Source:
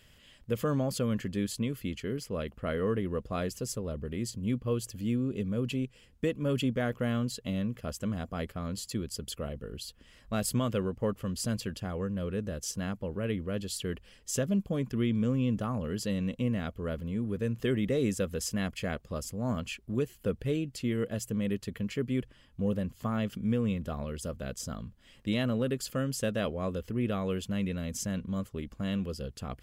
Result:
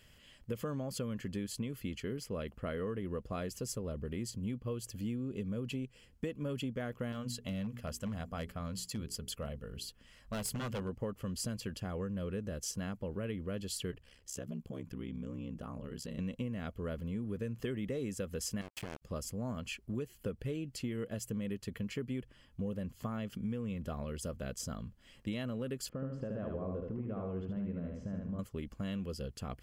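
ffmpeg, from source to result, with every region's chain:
-filter_complex "[0:a]asettb=1/sr,asplit=3[a][b][c];[a]atrim=end=7.124[d];[b]atrim=start=7.12:end=10.89,asetpts=PTS-STARTPTS,afade=t=in:d=0.004:c=qsin,afade=t=out:st=3.766:d=0.004:c=qsin,equalizer=f=350:t=o:w=0.64:g=-8,bandreject=f=60:t=h:w=6,bandreject=f=120:t=h:w=6,bandreject=f=180:t=h:w=6,bandreject=f=240:t=h:w=6,bandreject=f=300:t=h:w=6,bandreject=f=360:t=h:w=6,bandreject=f=420:t=h:w=6,aeval=exprs='0.0473*(abs(mod(val(0)/0.0473+3,4)-2)-1)':c=same[e];[c]atrim=start=10.886[f];[d][e]acrossfade=d=0.004:c1=hsin:c2=qsin[g];[g][f]acrossfade=d=0.004:c1=qsin:c2=hsin,asettb=1/sr,asplit=3[h][i][j];[h]atrim=end=13.914[k];[i]atrim=start=13.91:end=16.19,asetpts=PTS-STARTPTS,afade=t=in:d=0.004:c=qsin,afade=t=out:st=2.276:d=0.004:c=qsin,acompressor=threshold=-37dB:ratio=2.5:attack=3.2:release=140:knee=1:detection=peak,aeval=exprs='val(0)*sin(2*PI*33*n/s)':c=same[l];[j]atrim=start=16.186[m];[k][l]acrossfade=d=0.004:c1=hsin:c2=qsin[n];[n][m]acrossfade=d=0.004:c1=qsin:c2=hsin,asettb=1/sr,asplit=3[o][p][q];[o]atrim=end=18.614[r];[p]atrim=start=18.61:end=19.02,asetpts=PTS-STARTPTS,afade=t=in:d=0.004:c=qsin,afade=t=out:st=0.406:d=0.004:c=qsin,acompressor=threshold=-35dB:ratio=20:attack=3.2:release=140:knee=1:detection=peak,acrusher=bits=5:mix=0:aa=0.5[s];[q]atrim=start=19.016[t];[r][s]acrossfade=d=0.004:c1=hsin:c2=qsin[u];[u][t]acrossfade=d=0.004:c1=qsin:c2=hsin,asettb=1/sr,asplit=3[v][w][x];[v]atrim=end=25.894[y];[w]atrim=start=25.89:end=28.39,asetpts=PTS-STARTPTS,afade=t=in:d=0.004:c=qsin,afade=t=out:st=2.496:d=0.004:c=qsin,lowpass=1.1k,acompressor=threshold=-32dB:ratio=6:attack=3.2:release=140:knee=1:detection=peak,aecho=1:1:75|150|225|300|375:0.708|0.255|0.0917|0.033|0.0119,atrim=end_sample=110250[z];[x]atrim=start=28.386[aa];[y][z]acrossfade=d=0.004:c1=hsin:c2=qsin[ab];[ab][aa]acrossfade=d=0.004:c1=qsin:c2=hsin,bandreject=f=3.7k:w=14,acompressor=threshold=-32dB:ratio=6,volume=-2dB"

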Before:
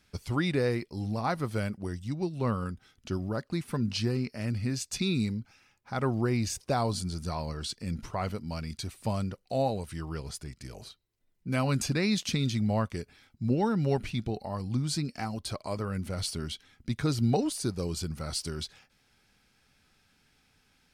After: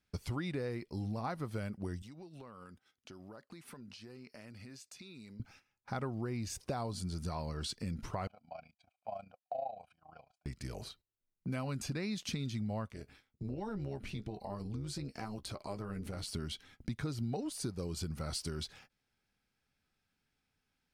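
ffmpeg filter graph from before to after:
-filter_complex "[0:a]asettb=1/sr,asplit=3[a][b][c];[a]atrim=end=2.024[d];[b]atrim=start=2.02:end=5.4,asetpts=PTS-STARTPTS,afade=t=in:d=0.004:c=qsin,afade=t=out:st=3.376:d=0.004:c=qsin,highpass=f=450:p=1,acompressor=threshold=-48dB:ratio=16:attack=3.2:release=140:knee=1:detection=peak[e];[c]atrim=start=5.396[f];[d][e]acrossfade=d=0.004:c1=hsin:c2=qsin[g];[g][f]acrossfade=d=0.004:c1=qsin:c2=hsin,asettb=1/sr,asplit=3[h][i][j];[h]atrim=end=8.274[k];[i]atrim=start=8.27:end=10.46,asetpts=PTS-STARTPTS,afade=t=in:d=0.004:c=qsin,afade=t=out:st=2.186:d=0.004:c=qsin,tremolo=f=28:d=0.788,asplit=3[l][m][n];[l]bandpass=f=730:t=q:w=8,volume=0dB[o];[m]bandpass=f=1.09k:t=q:w=8,volume=-6dB[p];[n]bandpass=f=2.44k:t=q:w=8,volume=-9dB[q];[o][p][q]amix=inputs=3:normalize=0,aecho=1:1:1.3:0.8,atrim=end_sample=96579[r];[j]atrim=start=10.456[s];[k][r]acrossfade=d=0.004:c1=hsin:c2=qsin[t];[t][s]acrossfade=d=0.004:c1=qsin:c2=hsin,asettb=1/sr,asplit=3[u][v][w];[u]atrim=end=12.914[x];[v]atrim=start=12.91:end=16.34,asetpts=PTS-STARTPTS,afade=t=in:d=0.004:c=qsin,afade=t=out:st=3.426:d=0.004:c=qsin,asplit=2[y][z];[z]adelay=15,volume=-11dB[aa];[y][aa]amix=inputs=2:normalize=0,atrim=end_sample=151263,acompressor=threshold=-39dB:ratio=2:attack=3.2:release=140:knee=1:detection=peak,tremolo=f=210:d=0.621[ab];[w]atrim=start=16.336[ac];[x][ab]acrossfade=d=0.004:c1=hsin:c2=qsin[ad];[ad][ac]acrossfade=d=0.004:c1=qsin:c2=hsin,agate=range=-16dB:threshold=-58dB:ratio=16:detection=peak,equalizer=f=6.9k:w=0.35:g=-3,acompressor=threshold=-37dB:ratio=5,volume=1.5dB"

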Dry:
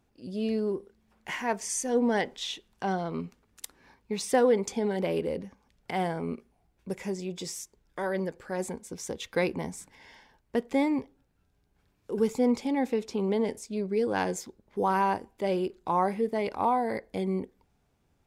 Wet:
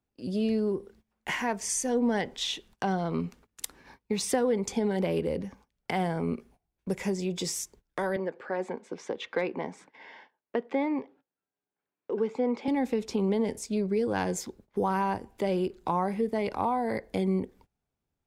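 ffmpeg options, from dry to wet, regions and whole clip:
-filter_complex "[0:a]asettb=1/sr,asplit=3[a][b][c];[a]atrim=end=8.164[d];[b]atrim=start=8.16:end=12.68,asetpts=PTS-STARTPTS,afade=t=in:d=0.004:c=qsin,afade=t=out:st=4.516:d=0.004:c=qsin,highpass=320,lowpass=2.6k,asoftclip=type=hard:threshold=-16dB[e];[c]atrim=start=12.676[f];[d][e]acrossfade=d=0.004:c1=hsin:c2=qsin[g];[g][f]acrossfade=d=0.004:c1=qsin:c2=hsin,agate=range=-20dB:threshold=-58dB:ratio=16:detection=peak,acrossover=split=170[h][i];[i]acompressor=threshold=-35dB:ratio=2.5[j];[h][j]amix=inputs=2:normalize=0,volume=6dB"

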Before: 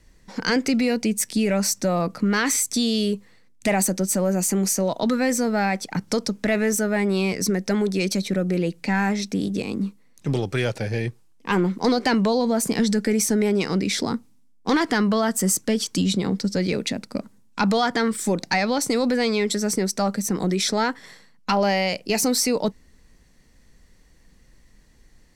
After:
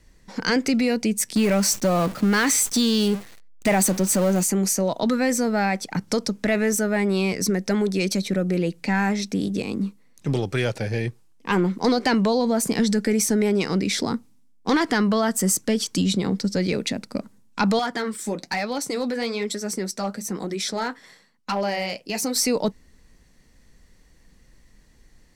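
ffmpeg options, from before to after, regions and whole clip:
-filter_complex "[0:a]asettb=1/sr,asplit=3[a][b][c];[a]atrim=end=1.354[d];[b]atrim=start=1.35:end=4.43,asetpts=PTS-STARTPTS,afade=t=in:d=0.004:c=qsin,afade=t=out:st=3.076:d=0.004:c=qsin,aeval=exprs='val(0)+0.5*0.0447*sgn(val(0))':c=same,agate=range=-33dB:threshold=-26dB:ratio=3:release=100:detection=peak[e];[c]atrim=start=4.426[f];[d][e]acrossfade=d=0.004:c1=hsin:c2=qsin[g];[g][f]acrossfade=d=0.004:c1=qsin:c2=hsin,asettb=1/sr,asplit=3[h][i][j];[h]atrim=end=17.794[k];[i]atrim=start=17.79:end=22.36,asetpts=PTS-STARTPTS,afade=t=in:d=0.004:c=qsin,afade=t=out:st=4.566:d=0.004:c=qsin,lowshelf=f=91:g=-11,flanger=delay=2.3:depth=7.7:regen=-54:speed=1.1:shape=triangular,volume=17dB,asoftclip=hard,volume=-17dB[l];[j]atrim=start=22.356[m];[k][l]acrossfade=d=0.004:c1=hsin:c2=qsin[n];[n][m]acrossfade=d=0.004:c1=qsin:c2=hsin"

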